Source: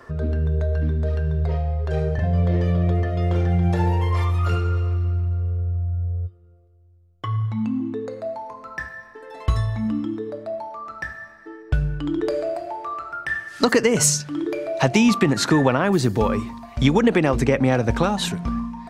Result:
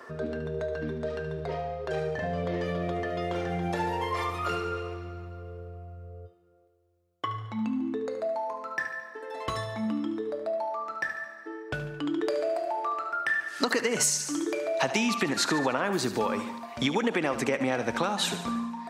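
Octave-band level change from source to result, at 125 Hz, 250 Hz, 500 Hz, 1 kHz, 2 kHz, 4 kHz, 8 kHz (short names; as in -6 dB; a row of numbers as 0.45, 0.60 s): -17.0, -9.0, -6.0, -3.0, -3.0, -3.5, -5.5 dB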